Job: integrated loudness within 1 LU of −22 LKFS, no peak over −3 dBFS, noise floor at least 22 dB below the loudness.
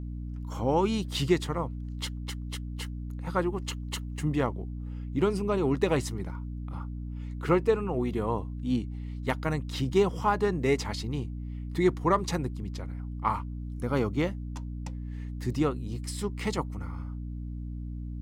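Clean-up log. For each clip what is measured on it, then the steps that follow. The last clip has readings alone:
mains hum 60 Hz; hum harmonics up to 300 Hz; level of the hum −34 dBFS; integrated loudness −31.0 LKFS; sample peak −11.5 dBFS; target loudness −22.0 LKFS
→ hum removal 60 Hz, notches 5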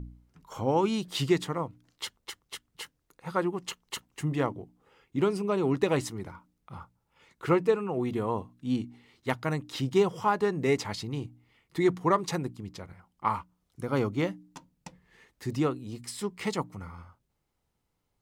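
mains hum none found; integrated loudness −30.0 LKFS; sample peak −11.5 dBFS; target loudness −22.0 LKFS
→ level +8 dB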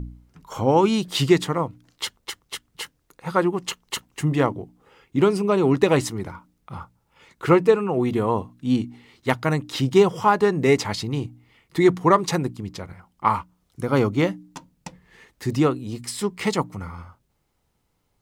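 integrated loudness −22.0 LKFS; sample peak −3.5 dBFS; background noise floor −70 dBFS

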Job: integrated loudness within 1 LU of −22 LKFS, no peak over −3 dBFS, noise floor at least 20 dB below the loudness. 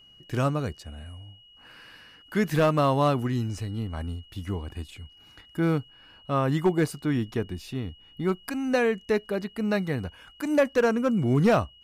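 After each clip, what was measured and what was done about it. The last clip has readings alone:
share of clipped samples 0.3%; peaks flattened at −14.0 dBFS; interfering tone 2,900 Hz; level of the tone −52 dBFS; integrated loudness −26.5 LKFS; sample peak −14.0 dBFS; target loudness −22.0 LKFS
→ clipped peaks rebuilt −14 dBFS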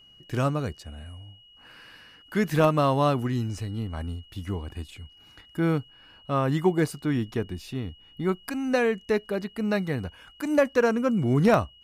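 share of clipped samples 0.0%; interfering tone 2,900 Hz; level of the tone −52 dBFS
→ notch filter 2,900 Hz, Q 30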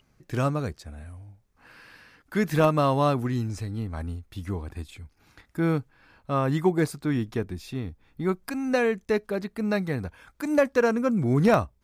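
interfering tone none found; integrated loudness −26.5 LKFS; sample peak −5.5 dBFS; target loudness −22.0 LKFS
→ level +4.5 dB
brickwall limiter −3 dBFS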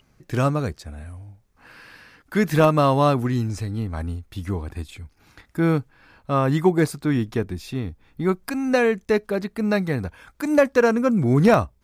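integrated loudness −22.0 LKFS; sample peak −3.0 dBFS; background noise floor −62 dBFS

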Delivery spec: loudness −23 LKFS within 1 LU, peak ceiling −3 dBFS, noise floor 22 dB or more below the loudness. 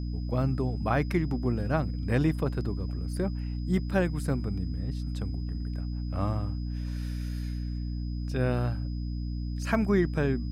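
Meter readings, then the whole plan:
mains hum 60 Hz; hum harmonics up to 300 Hz; level of the hum −30 dBFS; interfering tone 5,000 Hz; level of the tone −55 dBFS; integrated loudness −30.5 LKFS; sample peak −13.5 dBFS; target loudness −23.0 LKFS
→ hum removal 60 Hz, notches 5
notch filter 5,000 Hz, Q 30
level +7.5 dB

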